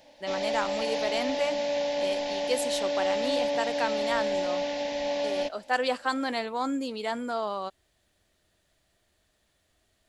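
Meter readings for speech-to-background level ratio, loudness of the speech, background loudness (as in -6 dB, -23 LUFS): -2.5 dB, -32.0 LUFS, -29.5 LUFS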